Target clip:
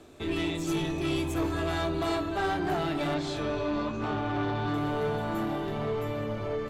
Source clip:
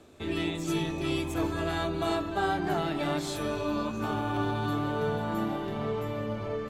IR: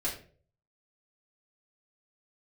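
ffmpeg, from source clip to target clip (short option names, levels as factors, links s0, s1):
-filter_complex "[0:a]asettb=1/sr,asplit=3[s0][s1][s2];[s0]atrim=end=3.144[s3];[s1]atrim=start=3.14:end=4.74,asetpts=PTS-STARTPTS,afade=t=in:d=0.004:c=qsin,afade=t=out:st=1.596:d=0.004:c=qsin,lowpass=4700[s4];[s2]atrim=start=4.736[s5];[s3][s4]acrossfade=d=0.004:c1=hsin:c2=qsin[s6];[s6][s5]acrossfade=d=0.004:c1=qsin:c2=hsin,asoftclip=type=tanh:threshold=0.0501,asplit=2[s7][s8];[1:a]atrim=start_sample=2205[s9];[s8][s9]afir=irnorm=-1:irlink=0,volume=0.158[s10];[s7][s10]amix=inputs=2:normalize=0,volume=1.19"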